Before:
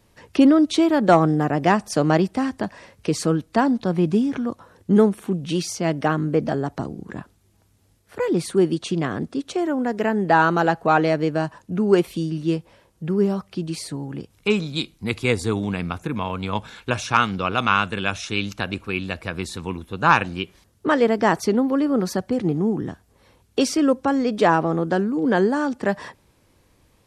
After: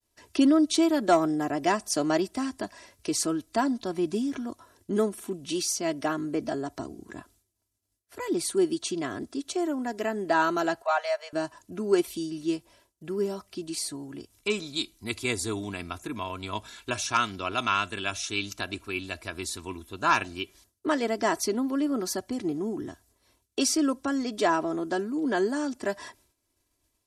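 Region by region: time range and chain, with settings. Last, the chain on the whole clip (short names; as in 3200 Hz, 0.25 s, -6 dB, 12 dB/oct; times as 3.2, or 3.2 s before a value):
10.82–11.33 de-esser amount 60% + steep high-pass 540 Hz 72 dB/oct + high shelf 6300 Hz -6.5 dB
whole clip: expander -50 dBFS; tone controls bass -2 dB, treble +11 dB; comb 3 ms, depth 61%; gain -8.5 dB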